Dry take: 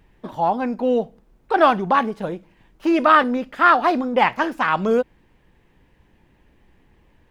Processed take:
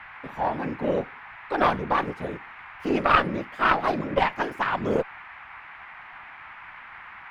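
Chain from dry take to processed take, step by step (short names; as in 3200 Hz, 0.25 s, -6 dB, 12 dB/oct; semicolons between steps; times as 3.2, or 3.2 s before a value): whisperiser; band noise 780–2300 Hz -37 dBFS; added harmonics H 2 -7 dB, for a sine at 0 dBFS; gain -6.5 dB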